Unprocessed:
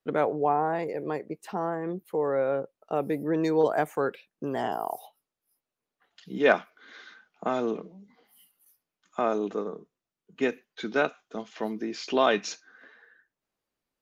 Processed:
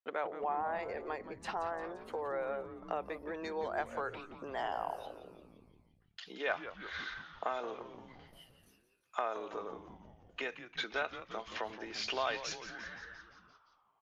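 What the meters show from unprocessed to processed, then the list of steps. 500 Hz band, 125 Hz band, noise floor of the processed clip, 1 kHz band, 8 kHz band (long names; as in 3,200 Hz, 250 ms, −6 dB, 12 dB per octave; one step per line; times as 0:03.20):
−12.0 dB, −16.0 dB, −72 dBFS, −7.5 dB, can't be measured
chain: noise gate with hold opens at −51 dBFS
downward compressor 3 to 1, threshold −40 dBFS, peak gain reduction 18 dB
band-pass filter 710–5,100 Hz
on a send: echo with shifted repeats 173 ms, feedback 63%, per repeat −120 Hz, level −12 dB
on the sum: level +7 dB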